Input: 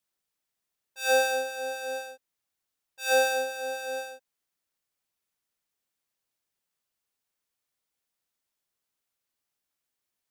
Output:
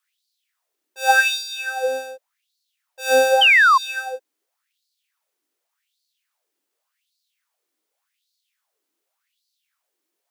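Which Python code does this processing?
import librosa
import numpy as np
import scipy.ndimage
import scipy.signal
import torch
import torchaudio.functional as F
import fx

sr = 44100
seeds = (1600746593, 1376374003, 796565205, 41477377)

y = fx.filter_lfo_highpass(x, sr, shape='sine', hz=0.87, low_hz=300.0, high_hz=4400.0, q=5.9)
y = fx.spec_paint(y, sr, seeds[0], shape='fall', start_s=3.41, length_s=0.37, low_hz=1000.0, high_hz=3200.0, level_db=-17.0)
y = F.gain(torch.from_numpy(y), 4.5).numpy()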